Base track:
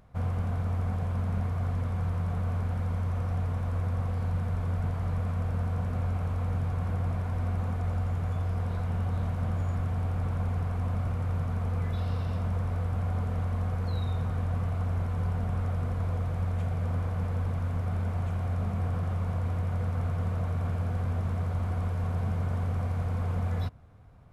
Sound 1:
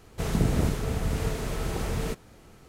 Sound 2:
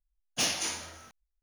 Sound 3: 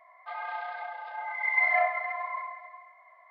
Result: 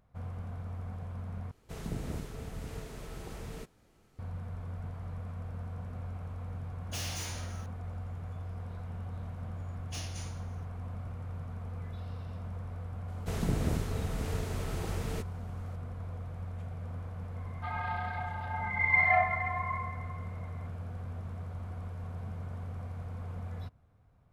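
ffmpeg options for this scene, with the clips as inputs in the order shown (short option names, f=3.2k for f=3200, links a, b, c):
-filter_complex "[1:a]asplit=2[a][b];[2:a]asplit=2[c][d];[0:a]volume=-10.5dB[e];[c]asoftclip=type=tanh:threshold=-37dB[f];[3:a]afreqshift=15[g];[e]asplit=2[h][i];[h]atrim=end=1.514[j];[a]atrim=end=2.68,asetpts=PTS-STARTPTS,volume=-13dB[k];[i]atrim=start=4.186[l];[f]atrim=end=1.42,asetpts=PTS-STARTPTS,volume=-0.5dB,afade=t=in:d=0.004:c=hsin,afade=t=out:st=1.416:d=0.004:c=hsin,adelay=6550[m];[d]atrim=end=1.42,asetpts=PTS-STARTPTS,volume=-15dB,afade=t=in:d=0.004:c=hsin,afade=t=out:st=1.416:d=0.004:c=hsin,adelay=420714S[n];[b]atrim=end=2.68,asetpts=PTS-STARTPTS,volume=-6.5dB,afade=t=in:d=0.004:c=hsin,afade=t=out:st=2.676:d=0.004:c=hsin,adelay=13080[o];[g]atrim=end=3.3,asetpts=PTS-STARTPTS,volume=-0.5dB,afade=t=in:d=0.004:c=hsin,afade=t=out:st=3.296:d=0.004:c=hsin,adelay=17360[p];[j][k]acrossfade=d=0.004:c1=hsin:c2=hsin[q];[q][l]acrossfade=d=0.004:c1=hsin:c2=hsin[r];[r][m][n][o][p]amix=inputs=5:normalize=0"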